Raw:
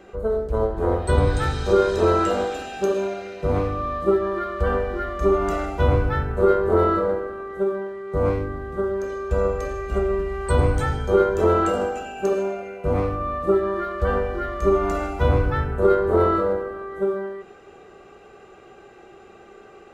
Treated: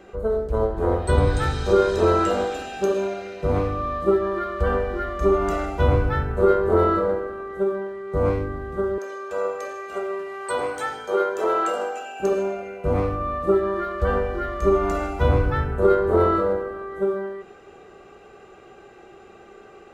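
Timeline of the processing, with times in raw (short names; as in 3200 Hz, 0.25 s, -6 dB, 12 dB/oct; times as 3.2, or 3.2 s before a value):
8.98–12.2 HPF 510 Hz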